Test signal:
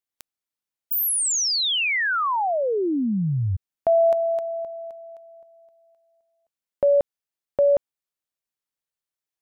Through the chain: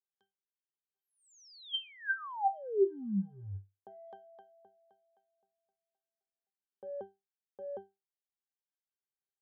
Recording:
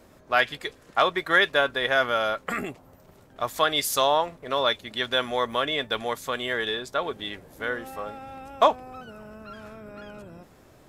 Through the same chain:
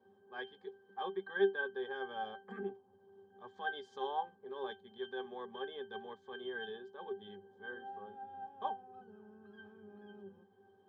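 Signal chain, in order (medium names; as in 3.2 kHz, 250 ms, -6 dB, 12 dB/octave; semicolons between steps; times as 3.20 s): transient shaper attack -8 dB, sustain -3 dB; cabinet simulation 260–7000 Hz, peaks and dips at 350 Hz +4 dB, 1.2 kHz +8 dB, 2 kHz -7 dB; pitch-class resonator G, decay 0.22 s; trim +3.5 dB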